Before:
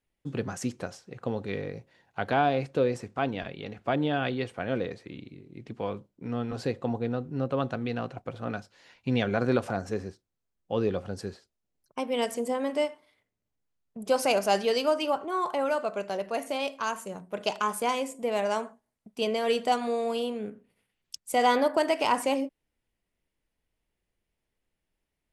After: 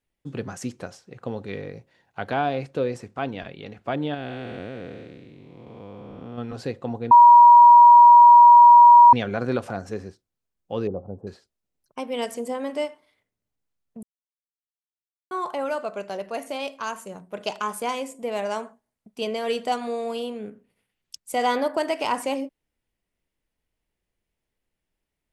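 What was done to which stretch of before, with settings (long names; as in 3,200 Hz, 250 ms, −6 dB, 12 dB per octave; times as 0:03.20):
0:04.14–0:06.38: spectrum smeared in time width 497 ms
0:07.11–0:09.13: beep over 957 Hz −6.5 dBFS
0:10.87–0:11.27: inverse Chebyshev low-pass filter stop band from 1,800 Hz
0:14.03–0:15.31: silence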